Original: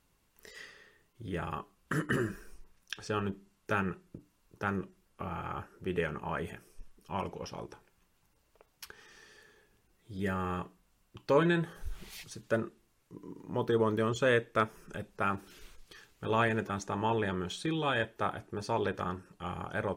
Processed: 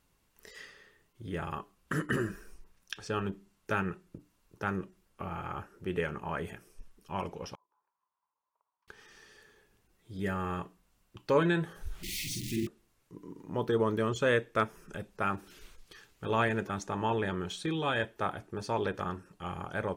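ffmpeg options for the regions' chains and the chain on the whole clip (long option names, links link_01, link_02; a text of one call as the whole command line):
ffmpeg -i in.wav -filter_complex "[0:a]asettb=1/sr,asplit=3[link_01][link_02][link_03];[link_01]atrim=end=7.554[link_04];[link_02]atrim=start=7.55:end=8.88,asetpts=PTS-STARTPTS,afade=type=in:duration=0.004:curve=qsin,afade=type=out:start_time=1.326:duration=0.004:curve=qsin,acompressor=threshold=-59dB:ratio=8:attack=3.2:release=140:knee=1:detection=peak,bandpass=frequency=1000:width_type=q:width=9.2[link_05];[link_03]atrim=start=8.876[link_06];[link_04][link_05]acrossfade=duration=0.004:curve1=hsin:curve2=qsin[link_07];[link_07][link_06]acrossfade=duration=0.004:curve1=qsin:curve2=hsin,asettb=1/sr,asplit=3[link_08][link_09][link_10];[link_08]atrim=end=12.034[link_11];[link_09]atrim=start=12.03:end=12.67,asetpts=PTS-STARTPTS,afade=type=in:duration=0.004:curve=qsin,afade=type=out:start_time=0.636:duration=0.004:curve=qsin,aeval=exprs='val(0)+0.5*0.0188*sgn(val(0))':channel_layout=same,asuperstop=centerf=850:order=20:qfactor=0.53,asplit=2[link_12][link_13];[link_13]adelay=48,volume=-4dB[link_14];[link_12][link_14]amix=inputs=2:normalize=0,atrim=end_sample=28224[link_15];[link_10]atrim=start=12.666[link_16];[link_11][link_15]acrossfade=duration=0.004:curve1=hsin:curve2=qsin[link_17];[link_17][link_16]acrossfade=duration=0.004:curve1=qsin:curve2=hsin" out.wav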